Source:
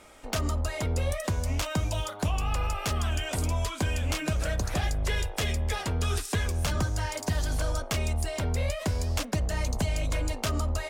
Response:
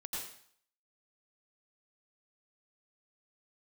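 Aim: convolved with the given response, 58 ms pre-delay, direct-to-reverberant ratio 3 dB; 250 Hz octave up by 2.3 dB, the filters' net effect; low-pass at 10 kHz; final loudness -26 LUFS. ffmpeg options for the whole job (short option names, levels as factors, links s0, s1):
-filter_complex "[0:a]lowpass=10000,equalizer=f=250:t=o:g=3,asplit=2[s0][s1];[1:a]atrim=start_sample=2205,adelay=58[s2];[s1][s2]afir=irnorm=-1:irlink=0,volume=0.708[s3];[s0][s3]amix=inputs=2:normalize=0,volume=1.26"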